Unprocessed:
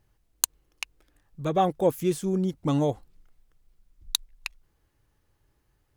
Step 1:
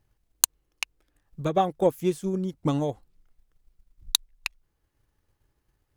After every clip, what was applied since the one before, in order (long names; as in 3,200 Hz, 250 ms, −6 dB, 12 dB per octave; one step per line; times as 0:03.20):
transient designer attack +7 dB, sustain −2 dB
level −3.5 dB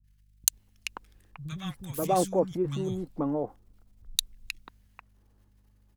transient designer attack −2 dB, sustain +11 dB
mains hum 50 Hz, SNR 30 dB
three-band delay without the direct sound lows, highs, mids 40/530 ms, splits 170/1,500 Hz
level −2 dB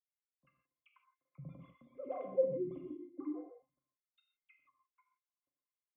three sine waves on the formant tracks
resonances in every octave C, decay 0.1 s
on a send at −3 dB: convolution reverb, pre-delay 13 ms
on the sum: level −4 dB